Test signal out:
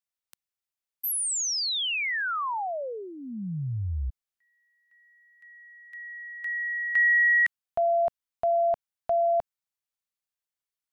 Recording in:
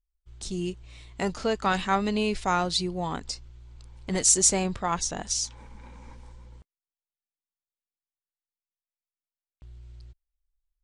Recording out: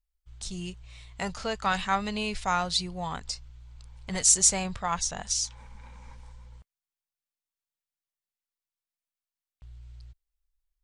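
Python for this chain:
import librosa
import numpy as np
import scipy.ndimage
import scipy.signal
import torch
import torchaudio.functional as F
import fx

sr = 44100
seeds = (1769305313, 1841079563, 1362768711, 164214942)

y = fx.peak_eq(x, sr, hz=320.0, db=-13.0, octaves=1.1)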